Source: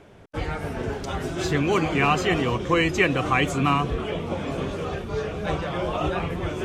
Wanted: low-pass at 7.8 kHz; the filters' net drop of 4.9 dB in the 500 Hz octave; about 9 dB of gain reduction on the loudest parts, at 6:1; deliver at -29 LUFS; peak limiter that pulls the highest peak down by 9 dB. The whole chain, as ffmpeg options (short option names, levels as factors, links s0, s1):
-af "lowpass=7800,equalizer=f=500:t=o:g=-6.5,acompressor=threshold=0.0447:ratio=6,volume=1.78,alimiter=limit=0.106:level=0:latency=1"